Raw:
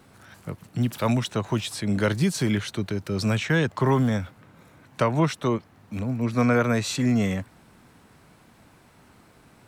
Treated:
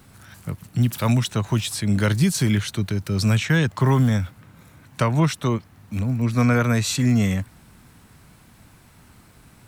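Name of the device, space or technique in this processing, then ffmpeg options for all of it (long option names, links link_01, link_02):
smiley-face EQ: -af "lowshelf=frequency=140:gain=8,equalizer=frequency=480:width_type=o:width=2:gain=-5,highshelf=frequency=7800:gain=8,volume=2.5dB"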